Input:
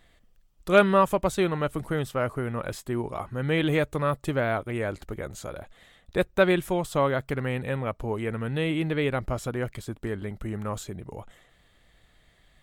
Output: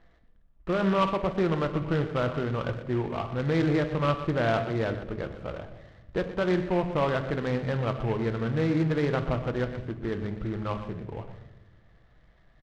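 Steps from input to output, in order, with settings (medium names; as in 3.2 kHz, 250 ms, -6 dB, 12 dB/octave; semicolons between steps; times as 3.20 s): low-pass 1.9 kHz 24 dB/octave; peak limiter -17 dBFS, peak gain reduction 12 dB; delay 121 ms -13 dB; reverberation RT60 0.95 s, pre-delay 6 ms, DRR 8 dB; delay time shaken by noise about 1.5 kHz, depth 0.044 ms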